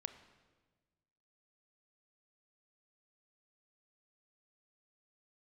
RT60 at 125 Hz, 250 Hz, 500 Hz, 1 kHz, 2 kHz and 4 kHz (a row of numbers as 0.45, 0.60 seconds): 1.8, 1.7, 1.5, 1.2, 1.2, 1.2 seconds